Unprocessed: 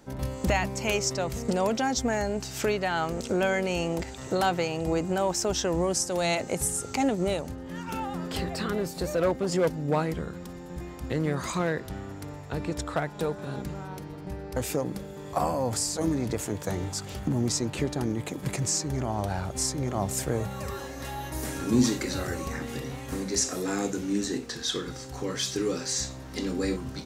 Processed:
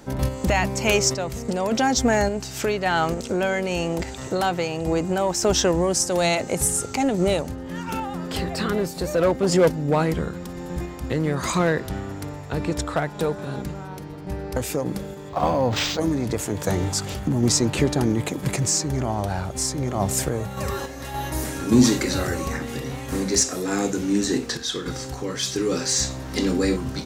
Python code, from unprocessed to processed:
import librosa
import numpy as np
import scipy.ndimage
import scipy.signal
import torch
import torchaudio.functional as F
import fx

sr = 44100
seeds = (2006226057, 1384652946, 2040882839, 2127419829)

p1 = 10.0 ** (-22.5 / 20.0) * np.tanh(x / 10.0 ** (-22.5 / 20.0))
p2 = x + (p1 * librosa.db_to_amplitude(-8.0))
p3 = fx.tremolo_random(p2, sr, seeds[0], hz=3.5, depth_pct=55)
p4 = fx.resample_linear(p3, sr, factor=4, at=(15.29, 16.0))
y = p4 * librosa.db_to_amplitude(6.0)